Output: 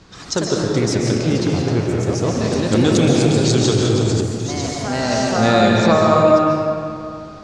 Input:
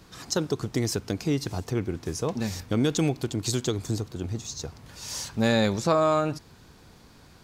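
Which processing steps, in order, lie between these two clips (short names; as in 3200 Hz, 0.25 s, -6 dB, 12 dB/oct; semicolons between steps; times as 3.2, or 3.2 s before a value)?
LPF 7100 Hz 24 dB/oct; echoes that change speed 91 ms, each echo +2 st, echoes 2, each echo -6 dB; digital reverb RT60 2.5 s, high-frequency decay 0.6×, pre-delay 0.1 s, DRR -1.5 dB; 2.73–4.21 fast leveller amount 50%; gain +5.5 dB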